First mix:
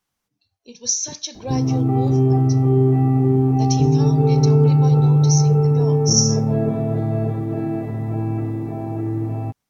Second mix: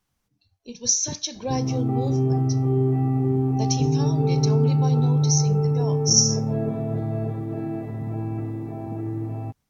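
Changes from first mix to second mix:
speech: add low shelf 180 Hz +11.5 dB; background -5.5 dB

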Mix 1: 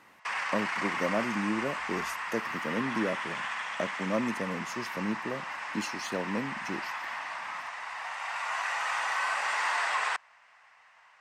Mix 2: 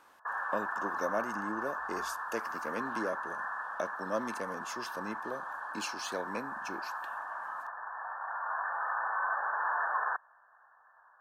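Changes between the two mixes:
background: add brick-wall FIR low-pass 1800 Hz; master: add bell 150 Hz -14 dB 1.9 oct

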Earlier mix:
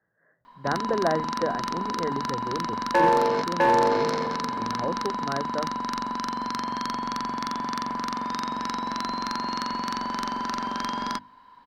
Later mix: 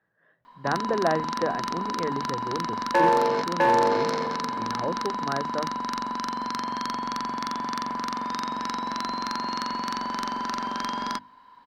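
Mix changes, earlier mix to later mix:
speech: remove rippled Chebyshev low-pass 2100 Hz, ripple 3 dB; master: add low shelf 140 Hz -5.5 dB

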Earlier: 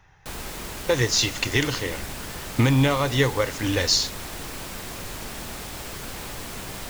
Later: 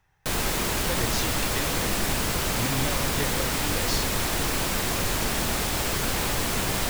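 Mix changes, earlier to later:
speech -12.0 dB; background +9.0 dB

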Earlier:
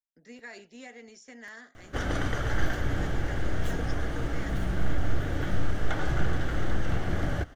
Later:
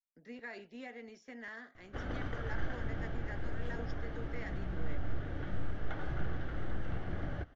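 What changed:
background -9.5 dB; master: add air absorption 200 m

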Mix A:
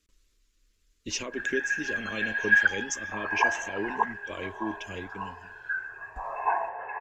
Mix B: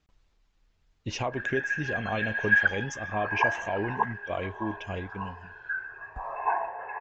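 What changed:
speech: remove fixed phaser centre 320 Hz, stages 4; master: add air absorption 140 m

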